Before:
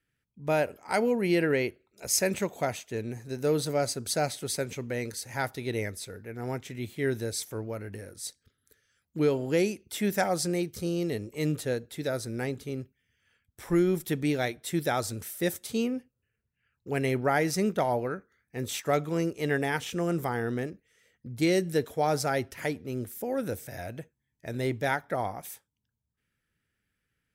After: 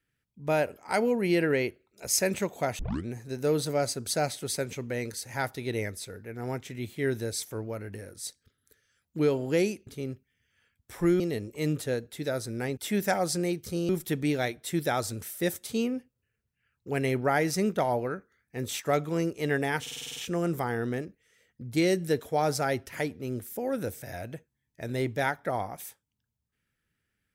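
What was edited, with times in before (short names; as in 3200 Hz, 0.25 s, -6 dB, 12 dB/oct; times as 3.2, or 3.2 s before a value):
2.79 tape start 0.27 s
9.87–10.99 swap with 12.56–13.89
19.81 stutter 0.05 s, 8 plays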